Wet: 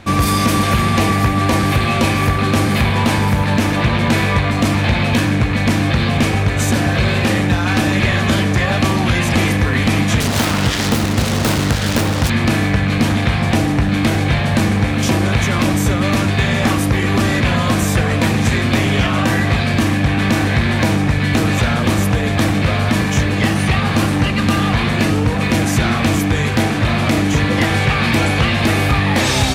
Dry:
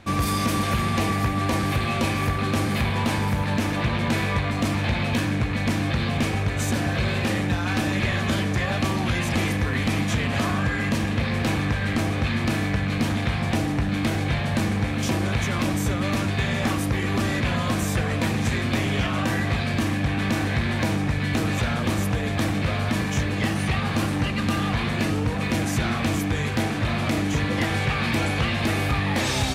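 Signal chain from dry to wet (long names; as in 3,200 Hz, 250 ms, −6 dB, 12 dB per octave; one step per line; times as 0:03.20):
0:10.20–0:12.30: phase distortion by the signal itself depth 0.6 ms
level +8.5 dB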